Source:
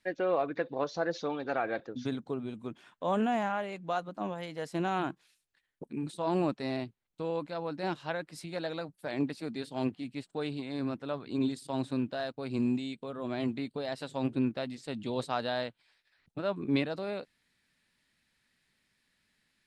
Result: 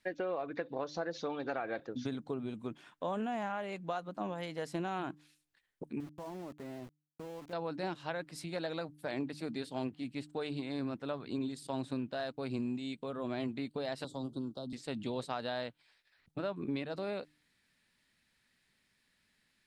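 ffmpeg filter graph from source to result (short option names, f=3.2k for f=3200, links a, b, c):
-filter_complex "[0:a]asettb=1/sr,asplit=3[a][b][c];[a]atrim=end=6.004[d];[b]atrim=start=6:end=7.53,asetpts=PTS-STARTPTS,afade=t=in:d=0.004:c=qsin,afade=t=out:st=1.526:d=0.004:c=qsin,lowpass=1.4k,acompressor=threshold=-42dB:ratio=5:attack=3.2:release=140:knee=1:detection=peak,aeval=exprs='val(0)*gte(abs(val(0)),0.00299)':c=same[e];[c]atrim=start=7.526[f];[d][e]acrossfade=d=0.004:c1=hsin:c2=qsin[g];[g][f]acrossfade=d=0.004:c1=qsin:c2=hsin,asettb=1/sr,asplit=3[h][i][j];[h]atrim=end=14.044[k];[i]atrim=start=14.04:end=14.73,asetpts=PTS-STARTPTS,afade=t=in:d=0.004:c=qsin,afade=t=out:st=0.686:d=0.004:c=qsin,asuperstop=centerf=2100:order=8:qfactor=1,acrossover=split=350|1500[l][m][n];[l]acompressor=threshold=-39dB:ratio=4[o];[m]acompressor=threshold=-46dB:ratio=4[p];[n]acompressor=threshold=-51dB:ratio=4[q];[o][p][q]amix=inputs=3:normalize=0[r];[j]atrim=start=14.726[s];[k][r]acrossfade=d=0.004:c1=hsin:c2=qsin[t];[t][s]acrossfade=d=0.004:c1=qsin:c2=hsin,bandreject=f=149.7:t=h:w=4,bandreject=f=299.4:t=h:w=4,acompressor=threshold=-33dB:ratio=6"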